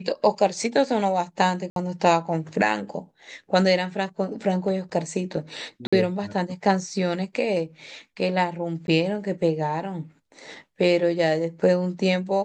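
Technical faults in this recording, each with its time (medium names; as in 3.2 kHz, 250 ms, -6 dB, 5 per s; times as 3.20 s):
1.70–1.76 s: dropout 62 ms
5.87–5.92 s: dropout 55 ms
8.87–8.88 s: dropout 11 ms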